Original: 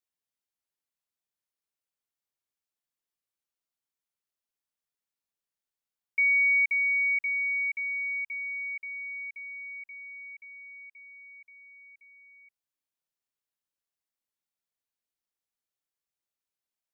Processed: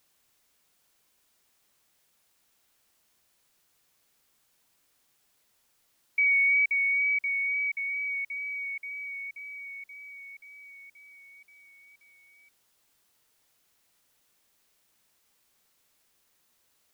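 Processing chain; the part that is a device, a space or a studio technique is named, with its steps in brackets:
plain cassette with noise reduction switched in (one half of a high-frequency compander decoder only; tape wow and flutter 21 cents; white noise bed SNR 35 dB)

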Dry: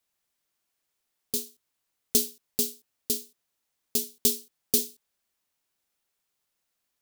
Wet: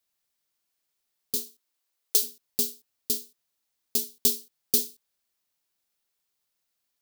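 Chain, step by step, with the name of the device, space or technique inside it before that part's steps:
presence and air boost (parametric band 4,500 Hz +3.5 dB 0.88 octaves; high-shelf EQ 11,000 Hz +5.5 dB)
0:01.35–0:02.22: high-pass filter 140 Hz → 470 Hz 24 dB per octave
level −3 dB

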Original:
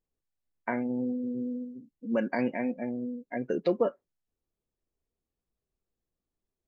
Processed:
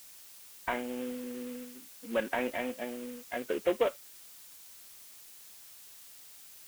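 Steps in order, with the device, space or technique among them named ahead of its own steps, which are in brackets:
army field radio (band-pass filter 380–3,100 Hz; variable-slope delta modulation 16 kbit/s; white noise bed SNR 22 dB)
high-shelf EQ 2,800 Hz +9 dB

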